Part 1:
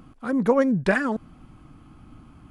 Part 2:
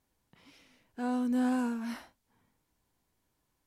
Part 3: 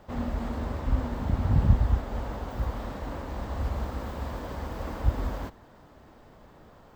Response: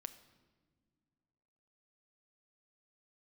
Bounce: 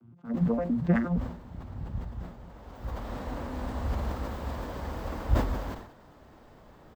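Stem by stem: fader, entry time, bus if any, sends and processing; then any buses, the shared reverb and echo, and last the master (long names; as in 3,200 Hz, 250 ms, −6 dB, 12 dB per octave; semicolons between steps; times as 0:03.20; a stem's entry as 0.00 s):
−11.0 dB, 0.00 s, no send, vocoder with an arpeggio as carrier bare fifth, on A#2, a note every 115 ms; low-shelf EQ 290 Hz +10 dB
−15.0 dB, 2.15 s, no send, no processing
−1.0 dB, 0.25 s, no send, automatic ducking −15 dB, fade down 0.60 s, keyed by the first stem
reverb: not used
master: level that may fall only so fast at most 85 dB per second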